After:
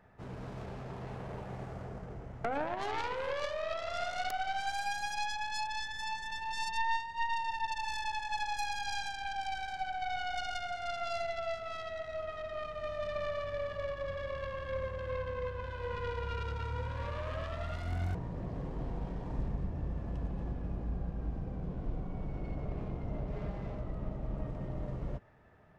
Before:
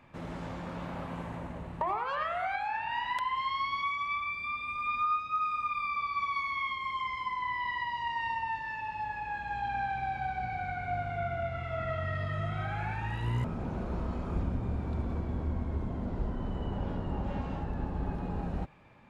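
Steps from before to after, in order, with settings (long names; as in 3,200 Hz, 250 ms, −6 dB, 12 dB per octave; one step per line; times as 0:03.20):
stylus tracing distortion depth 0.43 ms
wrong playback speed 45 rpm record played at 33 rpm
level −3.5 dB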